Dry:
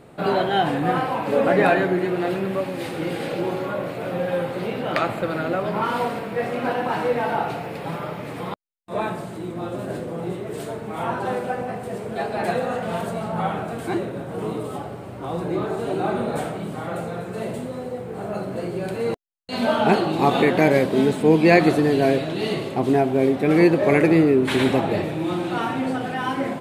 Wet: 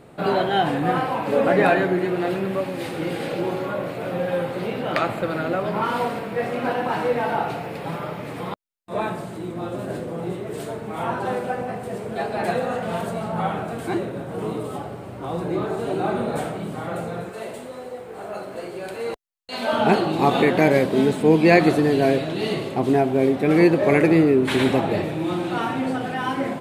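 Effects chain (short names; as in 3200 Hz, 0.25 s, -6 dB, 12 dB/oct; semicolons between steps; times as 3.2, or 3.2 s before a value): 17.29–19.73 bell 140 Hz -14.5 dB 2.1 oct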